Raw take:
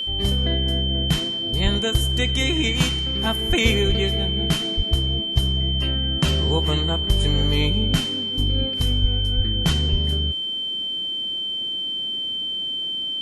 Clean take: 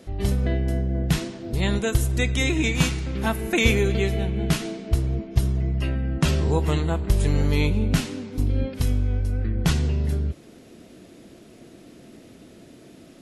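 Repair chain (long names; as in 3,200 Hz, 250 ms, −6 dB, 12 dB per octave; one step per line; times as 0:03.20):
notch filter 3,100 Hz, Q 30
high-pass at the plosives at 0:01.63/0:03.48/0:03.87/0:04.76/0:09.01/0:09.36/0:09.91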